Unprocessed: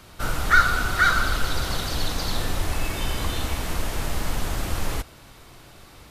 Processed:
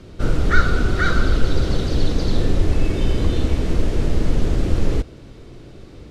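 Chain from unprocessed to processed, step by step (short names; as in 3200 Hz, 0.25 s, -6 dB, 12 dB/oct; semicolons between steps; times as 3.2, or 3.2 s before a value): LPF 6300 Hz 12 dB/oct; resonant low shelf 610 Hz +11 dB, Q 1.5; gain -2 dB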